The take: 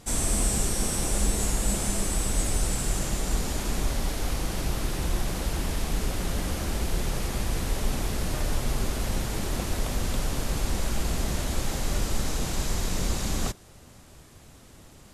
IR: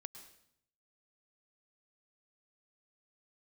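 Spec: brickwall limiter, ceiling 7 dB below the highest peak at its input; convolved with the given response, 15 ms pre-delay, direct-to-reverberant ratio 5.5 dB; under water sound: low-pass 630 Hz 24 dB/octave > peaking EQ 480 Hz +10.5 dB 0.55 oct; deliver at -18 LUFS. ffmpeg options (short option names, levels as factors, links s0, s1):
-filter_complex "[0:a]alimiter=limit=0.119:level=0:latency=1,asplit=2[s0][s1];[1:a]atrim=start_sample=2205,adelay=15[s2];[s1][s2]afir=irnorm=-1:irlink=0,volume=0.944[s3];[s0][s3]amix=inputs=2:normalize=0,lowpass=f=630:w=0.5412,lowpass=f=630:w=1.3066,equalizer=f=480:t=o:w=0.55:g=10.5,volume=4.22"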